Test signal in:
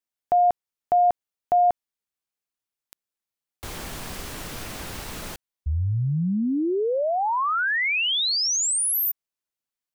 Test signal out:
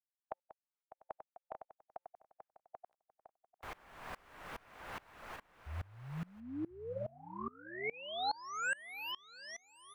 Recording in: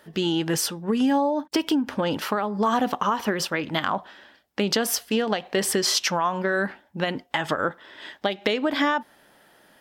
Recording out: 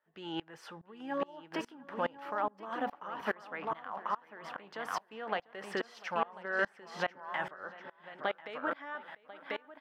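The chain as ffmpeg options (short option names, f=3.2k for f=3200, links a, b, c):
-filter_complex "[0:a]acrossover=split=7200[a][b];[b]acompressor=threshold=-35dB:ratio=4:attack=1:release=60[c];[a][c]amix=inputs=2:normalize=0,acrossover=split=590 2300:gain=0.2 1 0.1[d][e][f];[d][e][f]amix=inputs=3:normalize=0,asplit=2[g][h];[h]aecho=0:1:1042:0.473[i];[g][i]amix=inputs=2:normalize=0,afftfilt=real='re*lt(hypot(re,im),0.447)':imag='im*lt(hypot(re,im),0.447)':win_size=1024:overlap=0.75,asplit=2[j][k];[k]adelay=696,lowpass=f=4.4k:p=1,volume=-13.5dB,asplit=2[l][m];[m]adelay=696,lowpass=f=4.4k:p=1,volume=0.38,asplit=2[n][o];[o]adelay=696,lowpass=f=4.4k:p=1,volume=0.38,asplit=2[p][q];[q]adelay=696,lowpass=f=4.4k:p=1,volume=0.38[r];[l][n][p][r]amix=inputs=4:normalize=0[s];[j][s]amix=inputs=2:normalize=0,aeval=exprs='val(0)*pow(10,-26*if(lt(mod(-2.4*n/s,1),2*abs(-2.4)/1000),1-mod(-2.4*n/s,1)/(2*abs(-2.4)/1000),(mod(-2.4*n/s,1)-2*abs(-2.4)/1000)/(1-2*abs(-2.4)/1000))/20)':c=same"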